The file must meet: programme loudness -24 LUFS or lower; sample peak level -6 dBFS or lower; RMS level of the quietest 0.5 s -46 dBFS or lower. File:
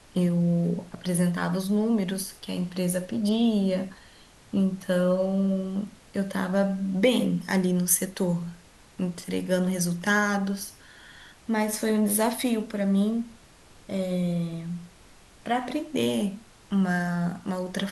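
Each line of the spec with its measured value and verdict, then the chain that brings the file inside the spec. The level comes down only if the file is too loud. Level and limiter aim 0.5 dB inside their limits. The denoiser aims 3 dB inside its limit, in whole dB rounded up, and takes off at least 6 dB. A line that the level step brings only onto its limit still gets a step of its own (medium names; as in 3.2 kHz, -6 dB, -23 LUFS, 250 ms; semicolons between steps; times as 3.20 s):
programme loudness -26.5 LUFS: pass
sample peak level -8.5 dBFS: pass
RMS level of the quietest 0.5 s -53 dBFS: pass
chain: none needed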